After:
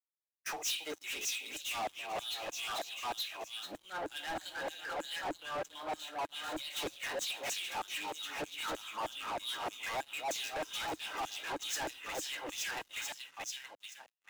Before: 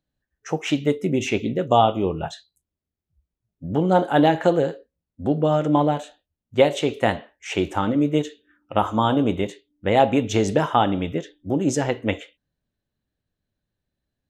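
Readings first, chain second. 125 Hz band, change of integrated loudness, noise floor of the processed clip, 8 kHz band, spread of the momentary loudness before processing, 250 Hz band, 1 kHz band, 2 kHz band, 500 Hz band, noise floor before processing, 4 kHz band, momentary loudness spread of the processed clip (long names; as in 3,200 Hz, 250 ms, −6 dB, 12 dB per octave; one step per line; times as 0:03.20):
−33.5 dB, −16.5 dB, −71 dBFS, −1.5 dB, 12 LU, −28.0 dB, −16.0 dB, −7.5 dB, −21.5 dB, −85 dBFS, −4.0 dB, 6 LU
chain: running median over 5 samples
first-order pre-emphasis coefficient 0.8
noise gate −56 dBFS, range −10 dB
high-shelf EQ 5,600 Hz −7.5 dB
echo with a time of its own for lows and highs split 830 Hz, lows 272 ms, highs 437 ms, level −3.5 dB
downward compressor 8 to 1, threshold −42 dBFS, peak gain reduction 18 dB
auto-filter high-pass saw down 3.2 Hz 580–7,900 Hz
pitch vibrato 1.4 Hz 56 cents
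hollow resonant body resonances 310/1,600/2,500/3,800 Hz, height 8 dB, ringing for 45 ms
soft clipping −34 dBFS, distortion −17 dB
leveller curve on the samples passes 5
multiband upward and downward expander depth 100%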